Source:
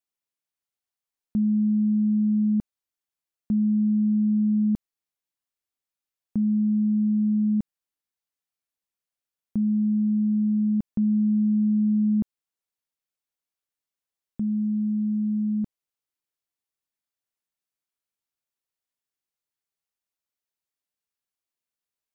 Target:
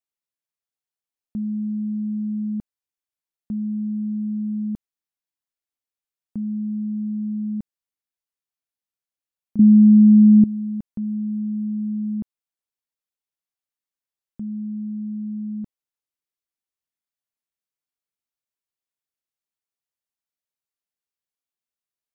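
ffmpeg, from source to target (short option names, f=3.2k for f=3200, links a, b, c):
-filter_complex "[0:a]asettb=1/sr,asplit=3[a][b][c];[a]atrim=end=9.594[d];[b]atrim=start=9.59:end=10.44,asetpts=PTS-STARTPTS,afade=t=in:d=0.004:c=qsin,afade=t=out:st=0.846:d=0.004:c=qsin,lowshelf=f=370:t=q:w=3:g=11[e];[c]atrim=start=10.436[f];[d][e]acrossfade=d=0.004:c1=hsin:c2=qsin[g];[g][f]acrossfade=d=0.004:c1=qsin:c2=hsin,volume=-4dB"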